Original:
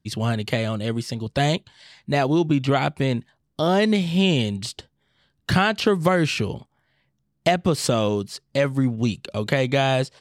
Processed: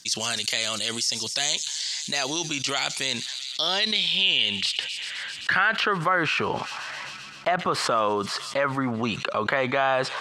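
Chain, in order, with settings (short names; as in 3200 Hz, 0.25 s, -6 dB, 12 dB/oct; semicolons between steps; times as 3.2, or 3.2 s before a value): thin delay 0.13 s, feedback 72%, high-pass 5100 Hz, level -18 dB; band-pass sweep 6200 Hz -> 1200 Hz, 2.99–6.23; fast leveller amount 70%; gain +3 dB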